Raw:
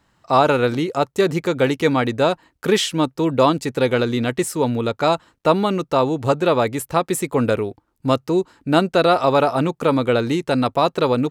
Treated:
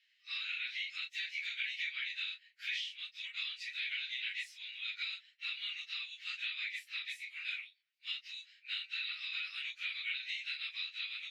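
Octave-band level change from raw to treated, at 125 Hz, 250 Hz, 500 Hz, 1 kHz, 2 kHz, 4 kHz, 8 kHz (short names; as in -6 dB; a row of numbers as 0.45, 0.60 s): under -40 dB, under -40 dB, under -40 dB, under -40 dB, -10.0 dB, -9.0 dB, -27.0 dB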